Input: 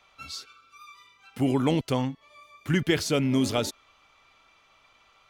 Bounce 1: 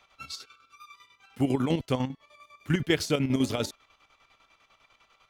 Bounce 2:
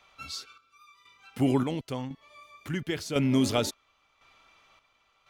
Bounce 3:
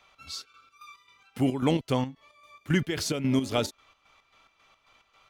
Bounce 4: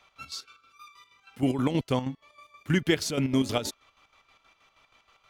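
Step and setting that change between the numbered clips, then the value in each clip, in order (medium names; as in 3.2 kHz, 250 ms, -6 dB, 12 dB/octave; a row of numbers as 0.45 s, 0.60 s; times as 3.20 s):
square tremolo, rate: 10 Hz, 0.95 Hz, 3.7 Hz, 6.3 Hz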